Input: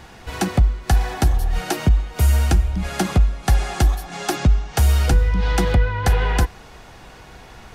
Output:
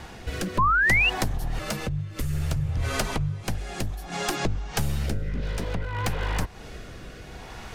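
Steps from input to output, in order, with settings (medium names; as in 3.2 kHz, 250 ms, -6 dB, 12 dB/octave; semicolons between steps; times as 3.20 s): one-sided wavefolder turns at -19.5 dBFS; compression 6:1, threshold -27 dBFS, peak gain reduction 15 dB; rotary cabinet horn 0.6 Hz; 0.58–1.10 s: painted sound rise 990–2900 Hz -25 dBFS; 1.59–3.44 s: frequency shift -150 Hz; trim +4.5 dB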